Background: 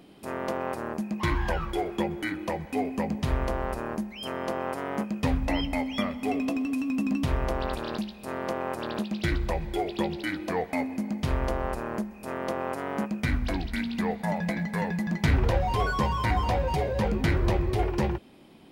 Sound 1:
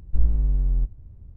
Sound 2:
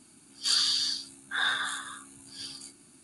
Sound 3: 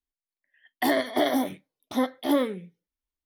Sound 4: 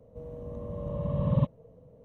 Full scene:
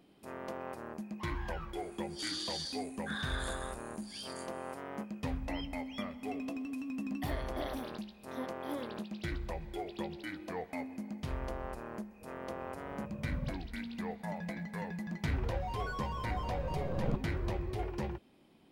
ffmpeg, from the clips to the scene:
ffmpeg -i bed.wav -i cue0.wav -i cue1.wav -i cue2.wav -i cue3.wav -filter_complex "[4:a]asplit=2[link_01][link_02];[0:a]volume=-11dB[link_03];[2:a]acompressor=threshold=-30dB:ratio=4:attack=0.47:release=28:knee=1:detection=rms[link_04];[link_02]aeval=exprs='max(val(0),0)':channel_layout=same[link_05];[link_04]atrim=end=3.03,asetpts=PTS-STARTPTS,volume=-6dB,afade=type=in:duration=0.004:curve=hsin,afade=type=out:start_time=3.026:duration=0.004:curve=hsin,adelay=1750[link_06];[3:a]atrim=end=3.25,asetpts=PTS-STARTPTS,volume=-17.5dB,afade=type=in:duration=0.004:curve=hsin,afade=type=out:start_time=3.246:duration=0.004:curve=hsin,adelay=6400[link_07];[link_01]atrim=end=2.04,asetpts=PTS-STARTPTS,volume=-16dB,afade=type=in:duration=0.004:curve=hsin,afade=type=out:start_time=2.036:duration=0.004:curve=hsin,adelay=12050[link_08];[link_05]atrim=end=2.04,asetpts=PTS-STARTPTS,volume=-5.5dB,afade=type=in:duration=0.004:curve=hsin,afade=type=out:start_time=2.036:duration=0.004:curve=hsin,adelay=15710[link_09];[link_03][link_06][link_07][link_08][link_09]amix=inputs=5:normalize=0" out.wav

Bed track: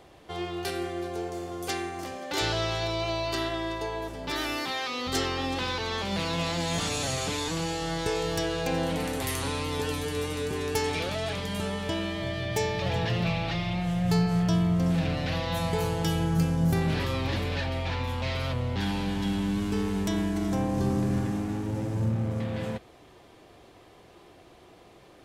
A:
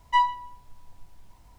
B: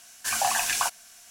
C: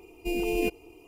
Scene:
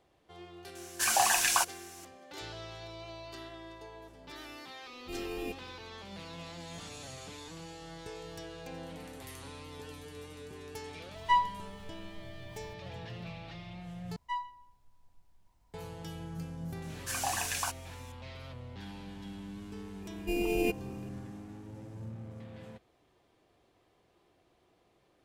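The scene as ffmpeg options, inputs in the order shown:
ffmpeg -i bed.wav -i cue0.wav -i cue1.wav -i cue2.wav -filter_complex "[2:a]asplit=2[link_01][link_02];[3:a]asplit=2[link_03][link_04];[1:a]asplit=2[link_05][link_06];[0:a]volume=-16dB[link_07];[link_03]aeval=exprs='val(0)+0.00447*sin(2*PI*2500*n/s)':channel_layout=same[link_08];[link_05]acompressor=mode=upward:threshold=-42dB:ratio=2.5:attack=3.2:release=140:knee=2.83:detection=peak[link_09];[link_07]asplit=2[link_10][link_11];[link_10]atrim=end=14.164[link_12];[link_06]atrim=end=1.58,asetpts=PTS-STARTPTS,volume=-15dB[link_13];[link_11]atrim=start=15.736[link_14];[link_01]atrim=end=1.3,asetpts=PTS-STARTPTS,volume=-1dB,afade=type=in:duration=0.004:curve=hsin,afade=type=out:start_time=1.296:duration=0.004:curve=hsin,adelay=750[link_15];[link_08]atrim=end=1.07,asetpts=PTS-STARTPTS,volume=-12dB,afade=type=in:duration=0.004:curve=hsin,afade=type=out:start_time=1.066:duration=0.004:curve=hsin,adelay=4830[link_16];[link_09]atrim=end=1.58,asetpts=PTS-STARTPTS,volume=-4.5dB,afade=type=in:duration=0.004:curve=hsin,afade=type=out:start_time=1.576:duration=0.004:curve=hsin,adelay=11160[link_17];[link_02]atrim=end=1.3,asetpts=PTS-STARTPTS,volume=-8.5dB,afade=type=in:duration=0.004:curve=hsin,afade=type=out:start_time=1.296:duration=0.004:curve=hsin,adelay=16820[link_18];[link_04]atrim=end=1.07,asetpts=PTS-STARTPTS,volume=-2.5dB,afade=type=in:duration=0.004:curve=hsin,afade=type=out:start_time=1.066:duration=0.004:curve=hsin,adelay=20020[link_19];[link_12][link_13]acrossfade=duration=0.004:curve1=hsin:curve2=hsin[link_20];[link_20][link_14]acrossfade=duration=0.004:curve1=hsin:curve2=hsin[link_21];[link_21][link_15][link_16][link_17][link_18][link_19]amix=inputs=6:normalize=0" out.wav

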